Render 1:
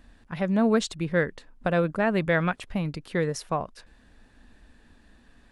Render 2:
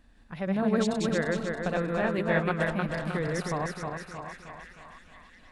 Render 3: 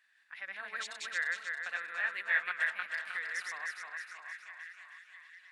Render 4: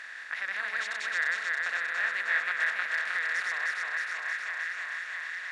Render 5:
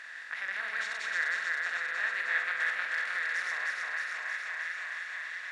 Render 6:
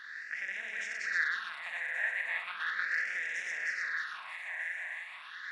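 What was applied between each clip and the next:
backward echo that repeats 156 ms, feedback 69%, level -1 dB; repeats whose band climbs or falls 662 ms, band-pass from 970 Hz, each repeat 0.7 oct, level -8.5 dB; trim -6 dB
resonant high-pass 1.8 kHz, resonance Q 2.9; trim -6 dB
spectral levelling over time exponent 0.4; treble shelf 9.6 kHz -10.5 dB
flutter echo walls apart 8.1 m, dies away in 0.4 s; trim -3 dB
phase shifter stages 6, 0.37 Hz, lowest notch 330–1200 Hz

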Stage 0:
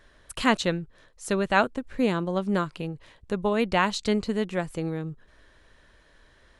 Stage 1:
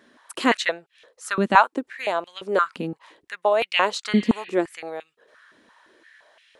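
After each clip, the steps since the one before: spectral replace 4.16–4.48 s, 1.5–4.6 kHz both; step-sequenced high-pass 5.8 Hz 240–2600 Hz; trim +1 dB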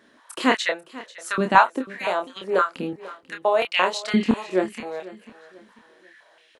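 doubling 27 ms -5.5 dB; feedback delay 492 ms, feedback 37%, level -18.5 dB; trim -1 dB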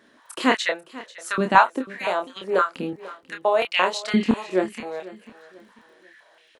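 crackle 19 per s -51 dBFS

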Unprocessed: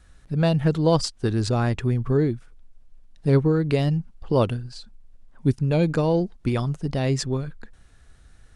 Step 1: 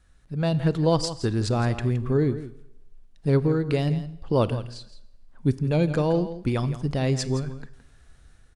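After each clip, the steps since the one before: level rider gain up to 6 dB; delay 167 ms -13 dB; Schroeder reverb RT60 0.92 s, combs from 27 ms, DRR 17.5 dB; trim -7 dB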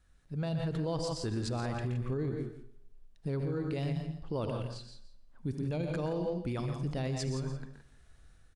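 on a send: multi-tap echo 74/123/145/173 ms -17/-8.5/-13/-14 dB; on the sum: peak limiter -19.5 dBFS, peak gain reduction 10.5 dB; trim -7 dB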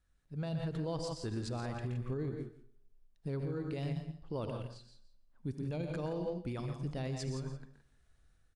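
upward expansion 1.5:1, over -44 dBFS; trim -2.5 dB

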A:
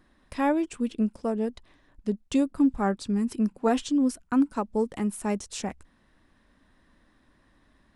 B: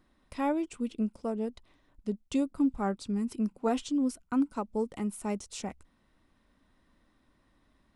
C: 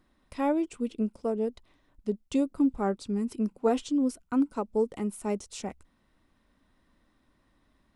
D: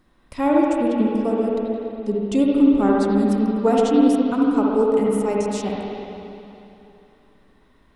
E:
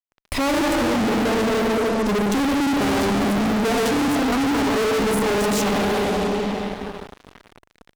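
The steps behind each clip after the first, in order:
band-stop 1.7 kHz, Q 7.7; trim -5 dB
dynamic bell 440 Hz, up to +6 dB, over -42 dBFS, Q 1.4
reverberation RT60 2.9 s, pre-delay 58 ms, DRR -3 dB; trim +6 dB
fuzz box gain 42 dB, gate -49 dBFS; trim -6 dB

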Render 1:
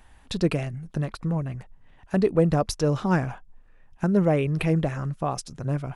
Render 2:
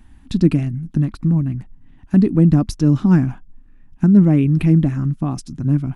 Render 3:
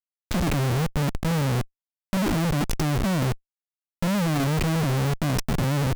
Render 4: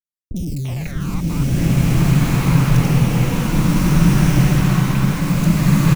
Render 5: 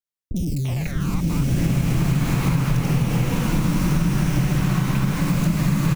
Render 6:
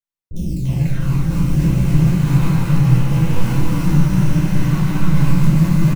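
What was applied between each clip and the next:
resonant low shelf 370 Hz +9.5 dB, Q 3; trim -1.5 dB
Schmitt trigger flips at -31.5 dBFS; trim -6 dB
phase shifter stages 12, 0.83 Hz, lowest notch 510–1500 Hz; three bands offset in time lows, highs, mids 50/340 ms, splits 430/3900 Hz; swelling reverb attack 1520 ms, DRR -10.5 dB
compression, threshold -16 dBFS, peak gain reduction 8.5 dB
on a send: delay 291 ms -4.5 dB; on the sum: simulated room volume 910 m³, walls furnished, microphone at 5.1 m; flange 0.84 Hz, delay 7.2 ms, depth 9.3 ms, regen +63%; trim -3.5 dB

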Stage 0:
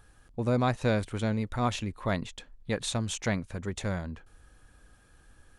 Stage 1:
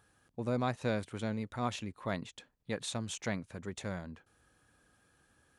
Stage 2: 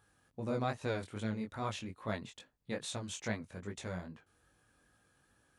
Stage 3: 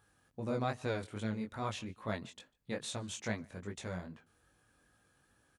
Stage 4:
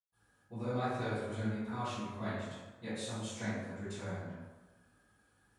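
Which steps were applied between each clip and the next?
high-pass 110 Hz 12 dB/octave; trim -6 dB
chorus 2.4 Hz, delay 18.5 ms, depth 4.3 ms; trim +1 dB
echo from a far wall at 25 m, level -27 dB
reverberation RT60 1.2 s, pre-delay 122 ms; trim +18 dB

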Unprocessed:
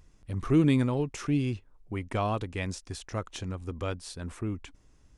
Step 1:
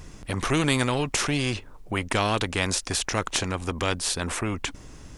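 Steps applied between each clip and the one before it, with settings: spectrum-flattening compressor 2:1; trim +6 dB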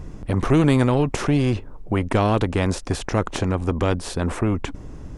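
tilt shelf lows +8.5 dB, about 1.4 kHz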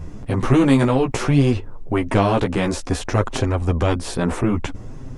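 chorus voices 2, 0.59 Hz, delay 12 ms, depth 4.5 ms; trim +5 dB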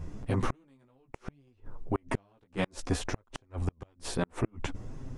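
inverted gate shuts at -9 dBFS, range -39 dB; trim -7.5 dB

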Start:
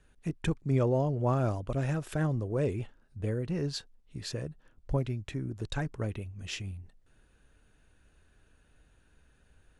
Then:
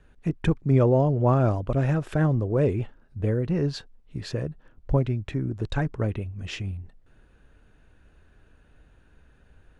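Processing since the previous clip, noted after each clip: low-pass 2.1 kHz 6 dB/octave; trim +7.5 dB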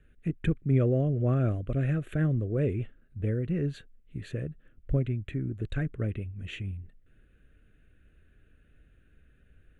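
static phaser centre 2.2 kHz, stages 4; trim -3.5 dB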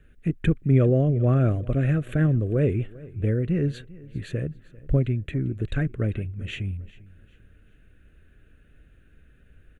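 feedback delay 396 ms, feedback 35%, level -21 dB; trim +5.5 dB

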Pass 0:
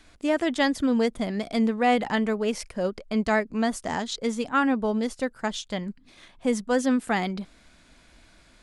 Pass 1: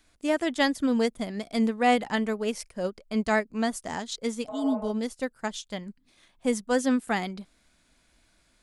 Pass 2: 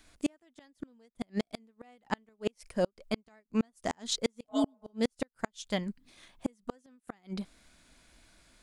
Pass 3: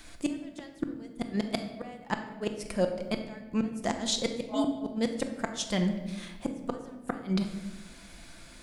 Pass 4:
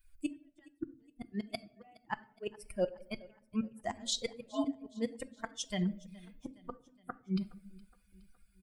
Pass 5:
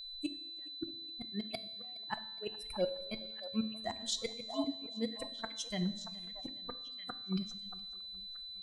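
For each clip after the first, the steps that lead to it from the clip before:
spectral replace 4.51–4.87 s, 450–2900 Hz after; treble shelf 8 kHz +11.5 dB; upward expansion 1.5:1, over -39 dBFS
inverted gate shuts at -20 dBFS, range -40 dB; trim +3.5 dB
in parallel at 0 dB: compressor with a negative ratio -37 dBFS, ratio -0.5; on the sum: simulated room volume 730 m³, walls mixed, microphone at 0.82 m
expander on every frequency bin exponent 2; feedback delay 417 ms, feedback 54%, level -23 dB; trim -2.5 dB
feedback comb 110 Hz, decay 1.1 s, harmonics all, mix 60%; repeats whose band climbs or falls 630 ms, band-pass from 880 Hz, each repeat 1.4 oct, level -8 dB; whistle 4 kHz -49 dBFS; trim +5 dB

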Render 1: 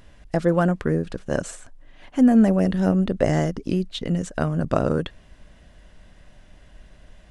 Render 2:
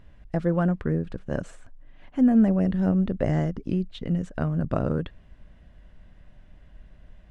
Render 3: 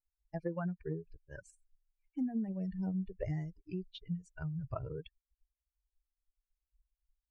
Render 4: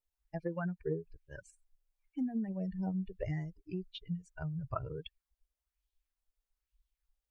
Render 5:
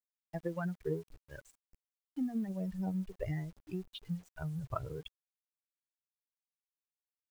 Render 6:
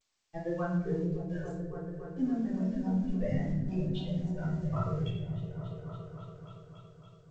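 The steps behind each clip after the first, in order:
tone controls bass +6 dB, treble -11 dB; trim -6.5 dB
expander on every frequency bin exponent 3; compression 6:1, threshold -29 dBFS, peak gain reduction 12 dB; trim -4 dB
sweeping bell 1.1 Hz 480–3600 Hz +8 dB
in parallel at -9 dB: crossover distortion -50 dBFS; on the sum: word length cut 10-bit, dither none; trim -2.5 dB
delay with an opening low-pass 282 ms, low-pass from 200 Hz, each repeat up 1 oct, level -3 dB; reverberation RT60 0.80 s, pre-delay 3 ms, DRR -8.5 dB; trim -8 dB; G.722 64 kbps 16 kHz

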